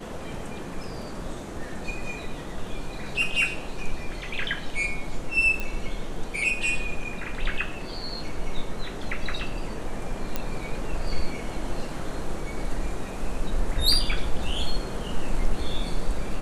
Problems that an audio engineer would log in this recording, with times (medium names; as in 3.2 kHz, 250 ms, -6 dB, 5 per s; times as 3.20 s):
5.60 s: pop -16 dBFS
10.36 s: pop -12 dBFS